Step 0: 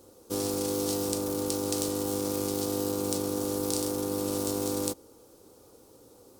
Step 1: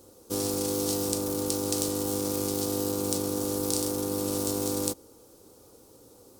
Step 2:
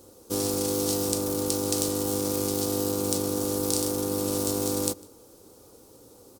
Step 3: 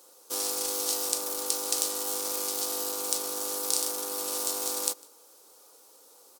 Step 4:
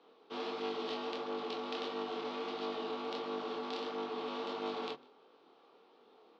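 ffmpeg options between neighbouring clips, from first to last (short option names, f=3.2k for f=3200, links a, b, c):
-af "bass=f=250:g=2,treble=f=4k:g=3"
-filter_complex "[0:a]asplit=2[a][b];[b]adelay=151.6,volume=-23dB,highshelf=f=4k:g=-3.41[c];[a][c]amix=inputs=2:normalize=0,volume=2dB"
-af "highpass=820,volume=1dB"
-af "flanger=delay=20:depth=6.9:speed=1.5,highpass=f=170:t=q:w=0.5412,highpass=f=170:t=q:w=1.307,lowpass=f=3.5k:t=q:w=0.5176,lowpass=f=3.5k:t=q:w=0.7071,lowpass=f=3.5k:t=q:w=1.932,afreqshift=-52,bandreject=f=50:t=h:w=6,bandreject=f=100:t=h:w=6,bandreject=f=150:t=h:w=6,volume=2dB"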